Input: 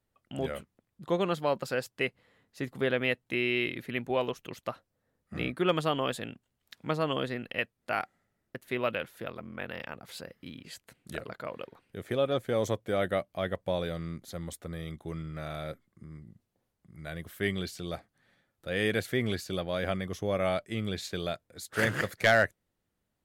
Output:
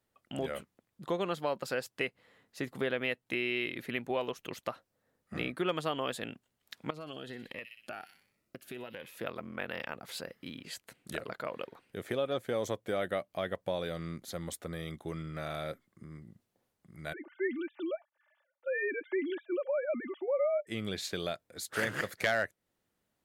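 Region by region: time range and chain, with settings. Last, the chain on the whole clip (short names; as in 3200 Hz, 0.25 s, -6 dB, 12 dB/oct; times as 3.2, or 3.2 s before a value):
6.9–9.18 thin delay 62 ms, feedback 48%, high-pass 4100 Hz, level -6.5 dB + compressor, threshold -39 dBFS + cascading phaser rising 1.3 Hz
17.13–20.67 sine-wave speech + high shelf 2400 Hz -9.5 dB + comb 3.4 ms, depth 76%
whole clip: low shelf 130 Hz -10.5 dB; compressor 2:1, threshold -36 dBFS; gain +2.5 dB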